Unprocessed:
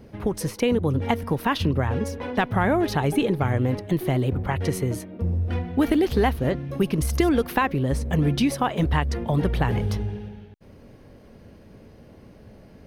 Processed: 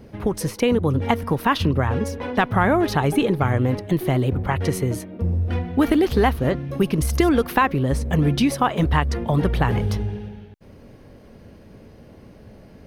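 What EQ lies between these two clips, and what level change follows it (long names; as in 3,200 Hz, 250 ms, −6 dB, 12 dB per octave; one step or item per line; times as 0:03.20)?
dynamic equaliser 1,200 Hz, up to +4 dB, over −38 dBFS, Q 2.3
+2.5 dB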